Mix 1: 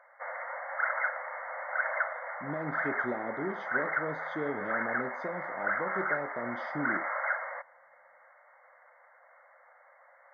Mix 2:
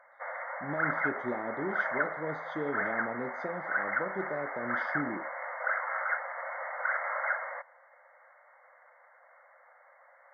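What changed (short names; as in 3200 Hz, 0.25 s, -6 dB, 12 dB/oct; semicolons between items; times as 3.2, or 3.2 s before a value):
speech: entry -1.80 s; master: remove HPF 50 Hz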